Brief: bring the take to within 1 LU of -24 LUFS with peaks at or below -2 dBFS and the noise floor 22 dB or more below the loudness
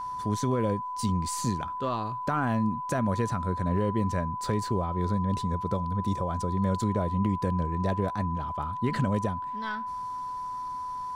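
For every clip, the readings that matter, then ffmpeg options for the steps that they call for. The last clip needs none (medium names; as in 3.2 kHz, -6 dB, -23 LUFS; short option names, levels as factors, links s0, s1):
steady tone 1 kHz; tone level -32 dBFS; loudness -29.5 LUFS; peak level -16.5 dBFS; loudness target -24.0 LUFS
-> -af "bandreject=f=1000:w=30"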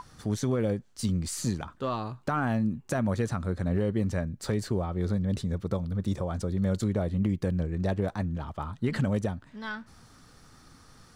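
steady tone not found; loudness -30.0 LUFS; peak level -18.0 dBFS; loudness target -24.0 LUFS
-> -af "volume=2"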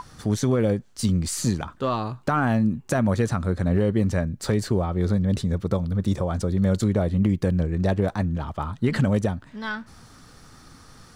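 loudness -24.0 LUFS; peak level -12.0 dBFS; noise floor -50 dBFS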